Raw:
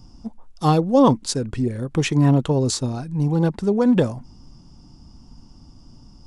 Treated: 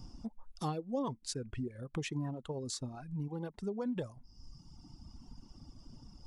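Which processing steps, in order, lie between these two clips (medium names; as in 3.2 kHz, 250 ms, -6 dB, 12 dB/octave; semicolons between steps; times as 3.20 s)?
compression 2.5:1, threshold -38 dBFS, peak gain reduction 18 dB; reverb removal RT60 1.9 s; trim -3 dB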